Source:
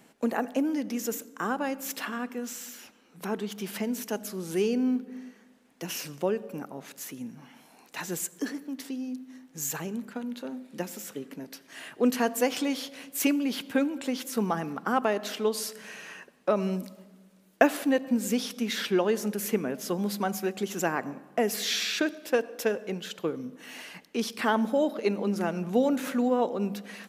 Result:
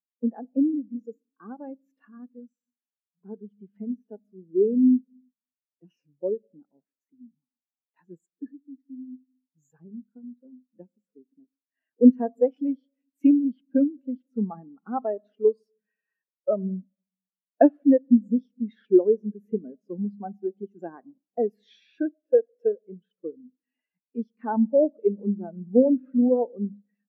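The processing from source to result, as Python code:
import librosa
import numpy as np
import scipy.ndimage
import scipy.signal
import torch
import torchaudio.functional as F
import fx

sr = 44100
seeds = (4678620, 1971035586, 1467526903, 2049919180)

y = fx.high_shelf(x, sr, hz=3400.0, db=-7.5)
y = fx.spectral_expand(y, sr, expansion=2.5)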